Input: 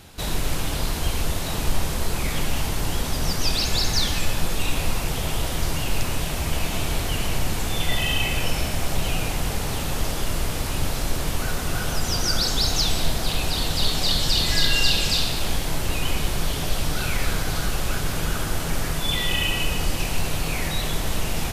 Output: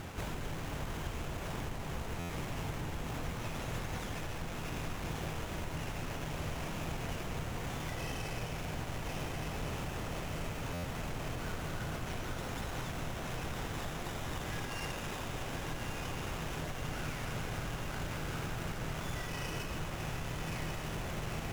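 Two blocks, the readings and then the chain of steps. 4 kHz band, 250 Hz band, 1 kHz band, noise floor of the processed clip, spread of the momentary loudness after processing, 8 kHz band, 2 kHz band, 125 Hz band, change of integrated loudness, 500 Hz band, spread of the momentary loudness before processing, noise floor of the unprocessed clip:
-21.5 dB, -10.5 dB, -10.5 dB, -41 dBFS, 1 LU, -19.0 dB, -13.0 dB, -11.5 dB, -15.0 dB, -10.5 dB, 6 LU, -27 dBFS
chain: low shelf 81 Hz -7.5 dB; diffused feedback echo 1.169 s, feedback 73%, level -6 dB; compressor 4:1, threshold -43 dBFS, peak gain reduction 22 dB; bell 110 Hz +4 dB 1.1 oct; Schroeder reverb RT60 3.5 s, combs from 25 ms, DRR 10 dB; stuck buffer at 2.19/10.73, samples 512, times 8; running maximum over 9 samples; gain +4 dB

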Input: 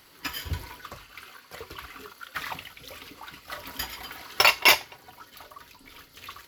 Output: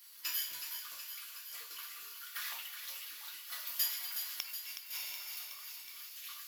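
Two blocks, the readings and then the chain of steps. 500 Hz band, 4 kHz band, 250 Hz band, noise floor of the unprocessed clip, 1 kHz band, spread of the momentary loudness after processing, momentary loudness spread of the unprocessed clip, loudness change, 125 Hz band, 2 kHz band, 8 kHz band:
-31.0 dB, -12.5 dB, under -25 dB, -55 dBFS, -22.5 dB, 11 LU, 24 LU, -15.5 dB, under -40 dB, -19.5 dB, -5.5 dB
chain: two-slope reverb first 0.33 s, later 2.5 s, from -21 dB, DRR -3.5 dB; flipped gate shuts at -13 dBFS, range -28 dB; HPF 160 Hz 12 dB/oct; differentiator; on a send: thinning echo 0.37 s, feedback 69%, high-pass 1100 Hz, level -7.5 dB; on the sum: gain -3 dB

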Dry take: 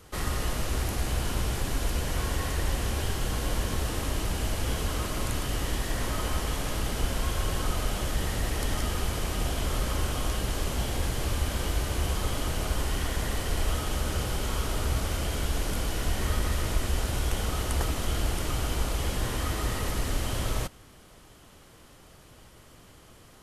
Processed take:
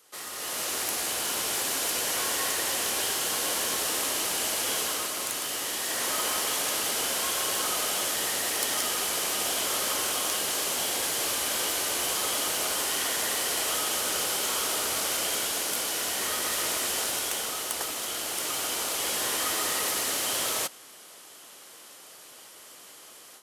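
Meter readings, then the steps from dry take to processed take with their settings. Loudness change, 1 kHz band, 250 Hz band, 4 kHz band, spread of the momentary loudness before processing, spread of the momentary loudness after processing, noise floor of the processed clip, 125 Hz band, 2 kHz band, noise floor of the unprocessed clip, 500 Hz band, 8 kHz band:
+4.0 dB, +2.5 dB, -6.5 dB, +7.5 dB, 1 LU, 12 LU, -49 dBFS, -22.5 dB, +4.5 dB, -53 dBFS, +0.5 dB, +10.5 dB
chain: tracing distortion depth 0.024 ms; HPF 410 Hz 12 dB/oct; high shelf 3400 Hz +10.5 dB; AGC gain up to 11.5 dB; gain -9 dB

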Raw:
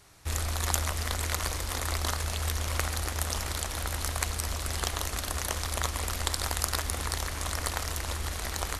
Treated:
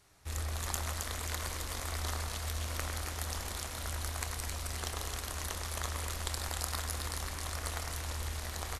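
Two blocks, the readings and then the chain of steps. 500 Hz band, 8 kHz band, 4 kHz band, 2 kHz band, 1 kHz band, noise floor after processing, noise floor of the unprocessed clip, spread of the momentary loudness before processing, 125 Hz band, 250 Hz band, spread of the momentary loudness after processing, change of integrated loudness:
-6.5 dB, -6.5 dB, -6.5 dB, -6.5 dB, -6.5 dB, -41 dBFS, -36 dBFS, 4 LU, -5.5 dB, -6.5 dB, 3 LU, -6.0 dB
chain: doubler 26 ms -12.5 dB; split-band echo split 2100 Hz, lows 0.104 s, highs 0.267 s, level -4 dB; gain -8.5 dB

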